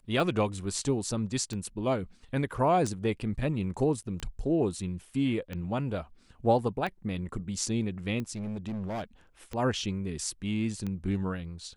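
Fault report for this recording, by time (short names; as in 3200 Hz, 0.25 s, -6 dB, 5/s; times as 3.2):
tick 45 rpm
8.35–9.04 clipped -31 dBFS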